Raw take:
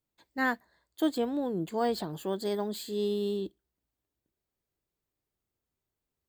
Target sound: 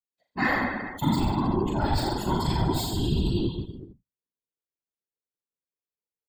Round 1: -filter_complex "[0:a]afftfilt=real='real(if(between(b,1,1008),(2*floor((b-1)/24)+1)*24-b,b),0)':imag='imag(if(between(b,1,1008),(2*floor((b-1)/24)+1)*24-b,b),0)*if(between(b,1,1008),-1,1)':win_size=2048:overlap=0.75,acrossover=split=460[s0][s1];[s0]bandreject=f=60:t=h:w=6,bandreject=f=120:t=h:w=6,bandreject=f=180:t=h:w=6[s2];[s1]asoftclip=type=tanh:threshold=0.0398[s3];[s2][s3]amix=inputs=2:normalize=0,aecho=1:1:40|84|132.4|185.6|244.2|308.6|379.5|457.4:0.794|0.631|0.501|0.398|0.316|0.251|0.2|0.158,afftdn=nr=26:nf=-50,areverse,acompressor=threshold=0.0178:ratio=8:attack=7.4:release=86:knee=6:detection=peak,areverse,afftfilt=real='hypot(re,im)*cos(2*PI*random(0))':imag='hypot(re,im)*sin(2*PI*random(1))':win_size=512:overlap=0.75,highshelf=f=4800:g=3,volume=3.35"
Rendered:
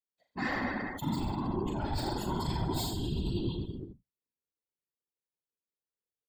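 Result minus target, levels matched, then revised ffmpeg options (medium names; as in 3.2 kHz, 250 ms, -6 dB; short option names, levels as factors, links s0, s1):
compression: peak gain reduction +9.5 dB; saturation: distortion +8 dB
-filter_complex "[0:a]afftfilt=real='real(if(between(b,1,1008),(2*floor((b-1)/24)+1)*24-b,b),0)':imag='imag(if(between(b,1,1008),(2*floor((b-1)/24)+1)*24-b,b),0)*if(between(b,1,1008),-1,1)':win_size=2048:overlap=0.75,acrossover=split=460[s0][s1];[s0]bandreject=f=60:t=h:w=6,bandreject=f=120:t=h:w=6,bandreject=f=180:t=h:w=6[s2];[s1]asoftclip=type=tanh:threshold=0.0841[s3];[s2][s3]amix=inputs=2:normalize=0,aecho=1:1:40|84|132.4|185.6|244.2|308.6|379.5|457.4:0.794|0.631|0.501|0.398|0.316|0.251|0.2|0.158,afftdn=nr=26:nf=-50,areverse,acompressor=threshold=0.0631:ratio=8:attack=7.4:release=86:knee=6:detection=peak,areverse,afftfilt=real='hypot(re,im)*cos(2*PI*random(0))':imag='hypot(re,im)*sin(2*PI*random(1))':win_size=512:overlap=0.75,highshelf=f=4800:g=3,volume=3.35"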